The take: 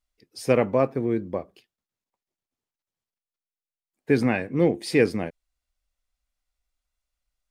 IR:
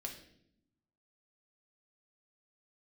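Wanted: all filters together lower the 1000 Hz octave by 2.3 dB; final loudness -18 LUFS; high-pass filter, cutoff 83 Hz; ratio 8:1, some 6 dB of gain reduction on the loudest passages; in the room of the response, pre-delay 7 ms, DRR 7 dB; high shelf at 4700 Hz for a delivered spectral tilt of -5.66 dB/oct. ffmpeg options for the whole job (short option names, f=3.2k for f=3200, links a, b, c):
-filter_complex "[0:a]highpass=83,equalizer=f=1k:t=o:g=-3.5,highshelf=f=4.7k:g=4,acompressor=threshold=-20dB:ratio=8,asplit=2[a][b];[1:a]atrim=start_sample=2205,adelay=7[c];[b][c]afir=irnorm=-1:irlink=0,volume=-5dB[d];[a][d]amix=inputs=2:normalize=0,volume=9.5dB"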